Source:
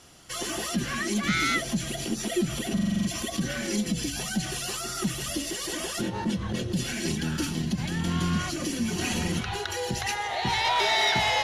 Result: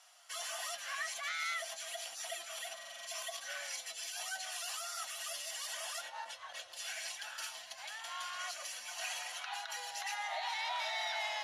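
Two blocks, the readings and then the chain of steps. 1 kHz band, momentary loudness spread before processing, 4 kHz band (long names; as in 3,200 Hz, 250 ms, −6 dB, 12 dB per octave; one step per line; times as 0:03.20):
−11.5 dB, 7 LU, −10.5 dB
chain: elliptic high-pass filter 630 Hz, stop band 40 dB
brickwall limiter −21.5 dBFS, peak gain reduction 8 dB
flanger 0.46 Hz, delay 5.2 ms, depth 2.7 ms, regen +71%
level −3 dB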